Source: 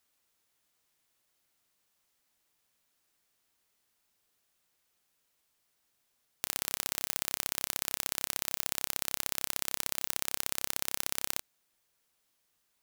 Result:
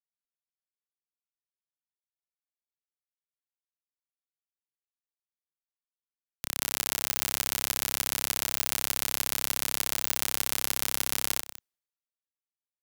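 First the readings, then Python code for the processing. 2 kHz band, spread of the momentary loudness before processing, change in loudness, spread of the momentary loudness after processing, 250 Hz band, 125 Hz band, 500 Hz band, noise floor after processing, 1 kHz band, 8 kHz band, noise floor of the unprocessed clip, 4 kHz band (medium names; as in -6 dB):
+5.5 dB, 1 LU, +5.5 dB, 3 LU, +5.5 dB, +6.5 dB, +5.0 dB, under -85 dBFS, +5.0 dB, +5.0 dB, -77 dBFS, +5.5 dB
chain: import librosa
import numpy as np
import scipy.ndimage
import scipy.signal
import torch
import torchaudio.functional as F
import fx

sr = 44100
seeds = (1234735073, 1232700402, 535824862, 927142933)

y = x + 10.0 ** (-19.5 / 20.0) * np.pad(x, (int(189 * sr / 1000.0), 0))[:len(x)]
y = fx.leveller(y, sr, passes=3)
y = fx.band_widen(y, sr, depth_pct=100)
y = y * 10.0 ** (3.5 / 20.0)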